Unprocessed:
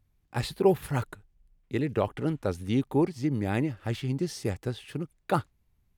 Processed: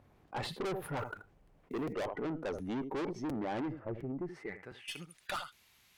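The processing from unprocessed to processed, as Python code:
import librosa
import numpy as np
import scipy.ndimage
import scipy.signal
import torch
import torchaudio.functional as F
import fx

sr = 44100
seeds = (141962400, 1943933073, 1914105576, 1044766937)

y = fx.high_shelf(x, sr, hz=11000.0, db=10.0)
y = fx.filter_sweep_bandpass(y, sr, from_hz=640.0, to_hz=3400.0, start_s=4.01, end_s=4.73, q=0.85)
y = fx.curve_eq(y, sr, hz=(110.0, 2100.0, 3500.0), db=(0, -7, -25), at=(3.79, 4.88))
y = fx.noise_reduce_blind(y, sr, reduce_db=13)
y = fx.quant_float(y, sr, bits=4, at=(0.97, 1.85))
y = y + 10.0 ** (-22.5 / 20.0) * np.pad(y, (int(80 * sr / 1000.0), 0))[:len(y)]
y = fx.tube_stage(y, sr, drive_db=38.0, bias=0.25)
y = fx.buffer_crackle(y, sr, first_s=0.45, period_s=0.71, block=256, kind='repeat')
y = fx.env_flatten(y, sr, amount_pct=50)
y = y * librosa.db_to_amplitude(4.0)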